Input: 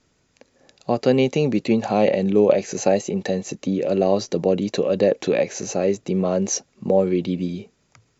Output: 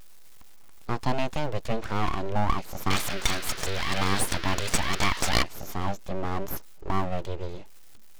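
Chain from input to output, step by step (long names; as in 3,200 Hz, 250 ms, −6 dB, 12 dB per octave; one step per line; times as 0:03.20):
converter with a step at zero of −30 dBFS
0:02.90–0:05.43: flat-topped bell 2,500 Hz +16 dB 2.5 octaves
full-wave rectification
level −6.5 dB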